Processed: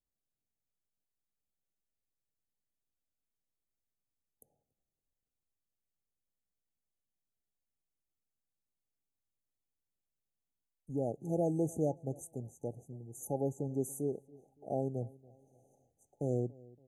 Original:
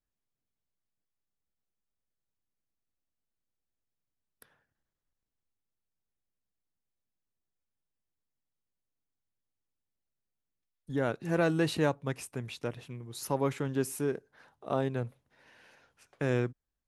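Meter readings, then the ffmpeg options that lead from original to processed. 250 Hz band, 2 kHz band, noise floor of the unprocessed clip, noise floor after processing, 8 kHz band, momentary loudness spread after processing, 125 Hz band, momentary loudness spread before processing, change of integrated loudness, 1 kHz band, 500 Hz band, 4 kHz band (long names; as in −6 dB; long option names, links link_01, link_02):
−4.0 dB, below −40 dB, below −85 dBFS, below −85 dBFS, −4.5 dB, 13 LU, −4.0 dB, 13 LU, −4.5 dB, −8.0 dB, −4.0 dB, below −35 dB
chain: -filter_complex "[0:a]afftfilt=real='re*(1-between(b*sr/4096,850,6000))':imag='im*(1-between(b*sr/4096,850,6000))':win_size=4096:overlap=0.75,asplit=2[link_01][link_02];[link_02]adelay=283,lowpass=frequency=2000:poles=1,volume=-22.5dB,asplit=2[link_03][link_04];[link_04]adelay=283,lowpass=frequency=2000:poles=1,volume=0.41,asplit=2[link_05][link_06];[link_06]adelay=283,lowpass=frequency=2000:poles=1,volume=0.41[link_07];[link_03][link_05][link_07]amix=inputs=3:normalize=0[link_08];[link_01][link_08]amix=inputs=2:normalize=0,volume=-4dB"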